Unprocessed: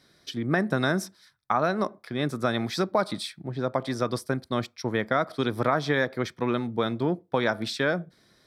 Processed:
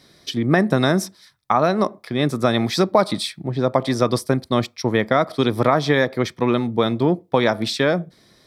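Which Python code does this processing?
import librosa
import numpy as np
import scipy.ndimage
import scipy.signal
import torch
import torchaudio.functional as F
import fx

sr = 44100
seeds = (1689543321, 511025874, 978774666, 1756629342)

p1 = fx.peak_eq(x, sr, hz=1500.0, db=-7.0, octaves=0.33)
p2 = fx.rider(p1, sr, range_db=4, speed_s=2.0)
p3 = p1 + (p2 * 10.0 ** (1.0 / 20.0))
y = p3 * 10.0 ** (1.5 / 20.0)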